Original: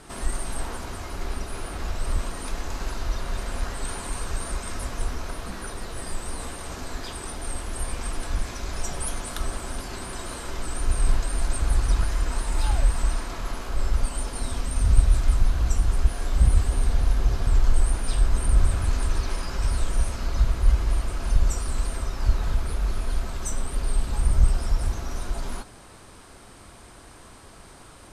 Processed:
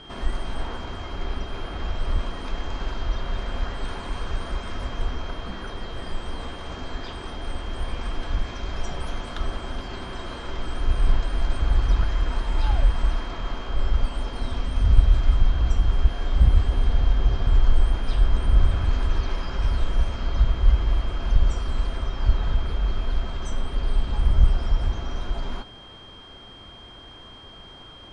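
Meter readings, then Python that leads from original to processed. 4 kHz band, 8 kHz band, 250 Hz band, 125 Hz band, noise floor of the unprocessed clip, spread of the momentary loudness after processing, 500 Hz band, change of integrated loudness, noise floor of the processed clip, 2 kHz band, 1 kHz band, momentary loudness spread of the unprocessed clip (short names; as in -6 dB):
+2.5 dB, -15.5 dB, +1.5 dB, +1.5 dB, -47 dBFS, 13 LU, +1.0 dB, +1.0 dB, -44 dBFS, 0.0 dB, +0.5 dB, 12 LU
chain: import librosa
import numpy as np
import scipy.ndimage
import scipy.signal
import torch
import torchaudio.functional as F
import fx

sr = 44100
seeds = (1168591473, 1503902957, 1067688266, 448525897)

y = x + 10.0 ** (-43.0 / 20.0) * np.sin(2.0 * np.pi * 3200.0 * np.arange(len(x)) / sr)
y = fx.air_absorb(y, sr, metres=170.0)
y = y * librosa.db_to_amplitude(1.5)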